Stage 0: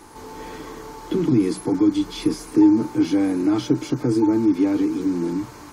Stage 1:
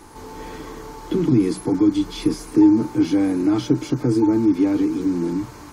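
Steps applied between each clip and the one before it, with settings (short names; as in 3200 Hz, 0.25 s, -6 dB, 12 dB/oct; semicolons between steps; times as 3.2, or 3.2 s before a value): low shelf 140 Hz +5.5 dB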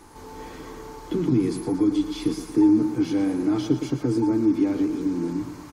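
feedback echo 0.116 s, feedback 51%, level -10.5 dB; gain -4.5 dB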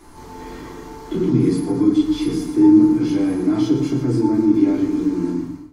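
ending faded out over 0.51 s; shoebox room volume 430 m³, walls furnished, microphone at 3.1 m; gain -1.5 dB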